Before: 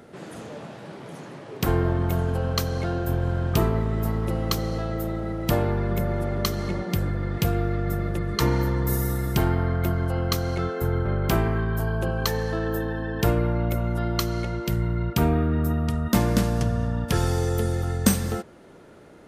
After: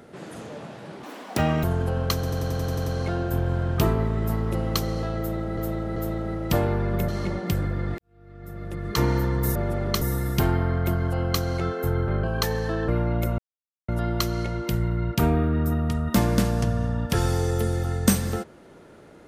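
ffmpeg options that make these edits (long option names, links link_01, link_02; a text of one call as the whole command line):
ffmpeg -i in.wav -filter_complex "[0:a]asplit=20[link_01][link_02][link_03][link_04][link_05][link_06][link_07][link_08][link_09][link_10][link_11][link_12][link_13][link_14][link_15][link_16][link_17][link_18][link_19][link_20];[link_01]atrim=end=1.034[link_21];[link_02]atrim=start=1.03:end=2.11,asetpts=PTS-STARTPTS,asetrate=78939,aresample=44100[link_22];[link_03]atrim=start=2.106:end=2.712[link_23];[link_04]atrim=start=2.618:end=2.712[link_24];[link_05]atrim=start=2.618:end=2.712[link_25];[link_06]atrim=start=2.618:end=2.712[link_26];[link_07]atrim=start=2.618:end=2.712[link_27];[link_08]atrim=start=2.618:end=2.712[link_28];[link_09]atrim=start=2.618:end=2.712[link_29];[link_10]atrim=start=2.618:end=2.712[link_30];[link_11]atrim=start=2.618:end=5.332[link_31];[link_12]atrim=start=4.938:end=5.332[link_32];[link_13]atrim=start=4.938:end=6.062[link_33];[link_14]atrim=start=6.518:end=7.42,asetpts=PTS-STARTPTS,afade=type=out:start_time=0.898:duration=0.004:curve=hsin[link_34];[link_15]atrim=start=7.42:end=8.992,asetpts=PTS-STARTPTS,afade=type=in:duration=1.05:curve=qua[link_35];[link_16]atrim=start=6.058:end=6.522[link_36];[link_17]atrim=start=8.988:end=11.212[link_37];[link_18]atrim=start=12.068:end=12.722[link_38];[link_19]atrim=start=13.368:end=13.87,asetpts=PTS-STARTPTS,afade=type=out:start_time=0.498:duration=0.004:curve=hsin,apad=pad_dur=0.5[link_39];[link_20]atrim=start=13.87,asetpts=PTS-STARTPTS,afade=type=in:duration=0.004:curve=hsin[link_40];[link_21][link_22]acrossfade=duration=0.004:curve1=hsin:curve2=hsin[link_41];[link_41][link_23]acrossfade=duration=0.004:curve1=hsin:curve2=hsin[link_42];[link_42][link_24]acrossfade=duration=0.004:curve1=hsin:curve2=hsin[link_43];[link_43][link_25]acrossfade=duration=0.004:curve1=hsin:curve2=hsin[link_44];[link_44][link_26]acrossfade=duration=0.004:curve1=hsin:curve2=hsin[link_45];[link_45][link_27]acrossfade=duration=0.004:curve1=hsin:curve2=hsin[link_46];[link_46][link_28]acrossfade=duration=0.004:curve1=hsin:curve2=hsin[link_47];[link_47][link_29]acrossfade=duration=0.004:curve1=hsin:curve2=hsin[link_48];[link_48][link_30]acrossfade=duration=0.004:curve1=hsin:curve2=hsin[link_49];[link_49][link_31]acrossfade=duration=0.004:curve1=hsin:curve2=hsin[link_50];[link_50][link_32]acrossfade=duration=0.004:curve1=hsin:curve2=hsin[link_51];[link_51][link_33]acrossfade=duration=0.004:curve1=hsin:curve2=hsin[link_52];[link_34][link_35]concat=n=2:v=0:a=1[link_53];[link_52][link_53]acrossfade=duration=0.004:curve1=hsin:curve2=hsin[link_54];[link_54][link_36]acrossfade=duration=0.004:curve1=hsin:curve2=hsin[link_55];[link_55][link_37]acrossfade=duration=0.004:curve1=hsin:curve2=hsin[link_56];[link_56][link_38]acrossfade=duration=0.004:curve1=hsin:curve2=hsin[link_57];[link_39][link_40]concat=n=2:v=0:a=1[link_58];[link_57][link_58]acrossfade=duration=0.004:curve1=hsin:curve2=hsin" out.wav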